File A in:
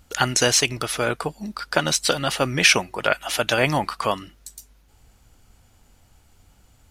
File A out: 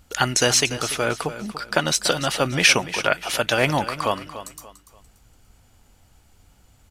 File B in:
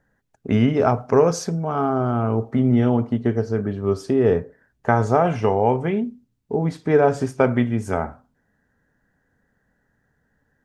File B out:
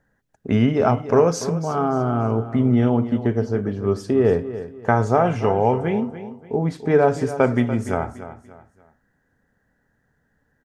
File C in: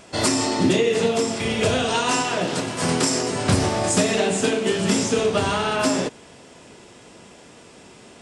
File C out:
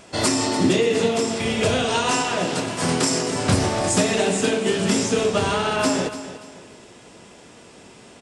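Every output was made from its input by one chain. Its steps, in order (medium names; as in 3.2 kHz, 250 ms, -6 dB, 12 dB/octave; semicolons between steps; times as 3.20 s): feedback delay 290 ms, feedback 33%, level -13 dB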